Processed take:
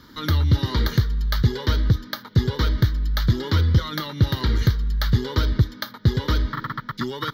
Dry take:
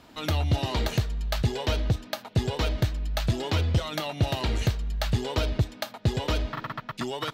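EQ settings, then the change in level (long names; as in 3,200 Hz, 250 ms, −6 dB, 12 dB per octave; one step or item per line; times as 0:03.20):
phaser with its sweep stopped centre 2,600 Hz, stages 6
dynamic equaliser 7,900 Hz, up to −7 dB, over −55 dBFS, Q 0.91
high-shelf EQ 12,000 Hz +7 dB
+7.0 dB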